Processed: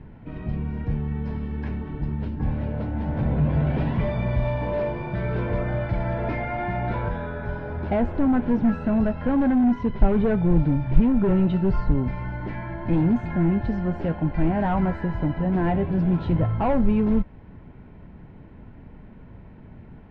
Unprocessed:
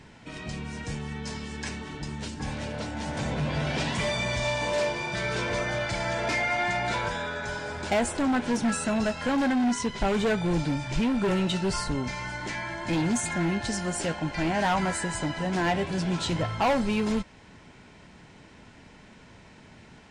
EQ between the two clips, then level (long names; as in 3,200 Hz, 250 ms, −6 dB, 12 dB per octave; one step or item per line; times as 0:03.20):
low-pass filter 3,200 Hz 6 dB per octave
high-frequency loss of the air 310 metres
spectral tilt −3 dB per octave
0.0 dB